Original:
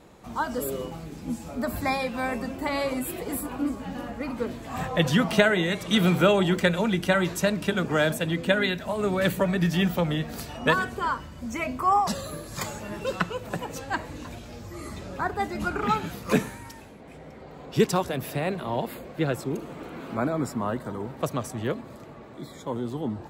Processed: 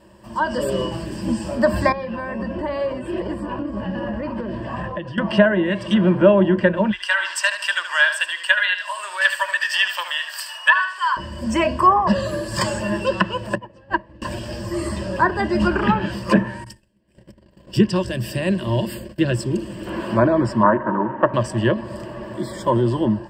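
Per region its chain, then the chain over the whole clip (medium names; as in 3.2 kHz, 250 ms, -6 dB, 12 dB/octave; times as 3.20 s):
1.92–5.18 s: compression 5:1, threshold -32 dBFS + tape spacing loss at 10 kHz 29 dB
6.91–11.17 s: high-pass 1.1 kHz 24 dB/octave + feedback delay 75 ms, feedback 31%, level -10 dB
13.55–14.22 s: tape spacing loss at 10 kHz 31 dB + band-stop 1.5 kHz, Q 24 + upward expansion 2.5:1, over -40 dBFS
16.64–19.87 s: peaking EQ 890 Hz -13 dB 2.3 oct + gate -47 dBFS, range -24 dB
20.63–21.34 s: cabinet simulation 170–2100 Hz, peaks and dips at 290 Hz +7 dB, 910 Hz +8 dB, 1.3 kHz +9 dB + loudspeaker Doppler distortion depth 0.27 ms
whole clip: low-pass that closes with the level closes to 1.6 kHz, closed at -19 dBFS; rippled EQ curve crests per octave 1.3, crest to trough 14 dB; level rider; trim -1 dB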